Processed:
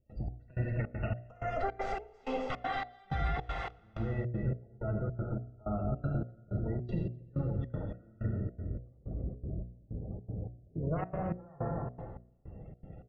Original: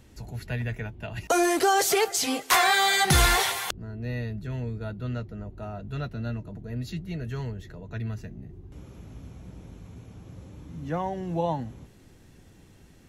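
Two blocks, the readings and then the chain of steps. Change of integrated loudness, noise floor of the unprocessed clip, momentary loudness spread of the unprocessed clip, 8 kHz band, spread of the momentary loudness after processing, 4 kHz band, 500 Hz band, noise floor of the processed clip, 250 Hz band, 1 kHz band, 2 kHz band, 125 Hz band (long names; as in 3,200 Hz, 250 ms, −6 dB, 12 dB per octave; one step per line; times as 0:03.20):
−11.0 dB, −54 dBFS, 25 LU, below −40 dB, 9 LU, below −25 dB, −8.5 dB, −61 dBFS, −6.0 dB, −12.0 dB, −17.0 dB, −2.5 dB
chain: lower of the sound and its delayed copy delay 1.5 ms
downward compressor 6 to 1, threshold −36 dBFS, peak gain reduction 17.5 dB
gate on every frequency bin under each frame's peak −20 dB strong
head-to-tape spacing loss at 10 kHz 45 dB
notch filter 4,200 Hz, Q 12
on a send: loudspeakers that aren't time-aligned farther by 31 metres −11 dB, 90 metres −9 dB
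on the sum: dense smooth reverb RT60 1.7 s, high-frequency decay 0.8×, DRR 2.5 dB
gate pattern ".xx...xxx" 159 BPM −24 dB
low-shelf EQ 140 Hz −3 dB
hum removal 60.26 Hz, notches 12
level +8 dB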